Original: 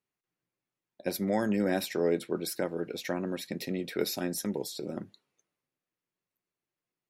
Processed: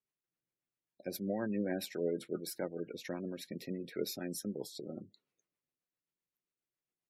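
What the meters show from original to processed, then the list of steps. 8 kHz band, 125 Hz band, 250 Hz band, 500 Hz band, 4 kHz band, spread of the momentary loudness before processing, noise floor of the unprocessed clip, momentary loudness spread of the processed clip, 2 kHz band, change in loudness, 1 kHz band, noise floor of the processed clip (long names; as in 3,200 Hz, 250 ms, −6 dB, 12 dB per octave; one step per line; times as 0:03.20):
−7.5 dB, −7.0 dB, −7.0 dB, −7.5 dB, −7.5 dB, 9 LU, below −85 dBFS, 9 LU, −9.5 dB, −7.5 dB, −11.5 dB, below −85 dBFS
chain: rotating-speaker cabinet horn 7.5 Hz
gate on every frequency bin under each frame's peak −25 dB strong
level −5.5 dB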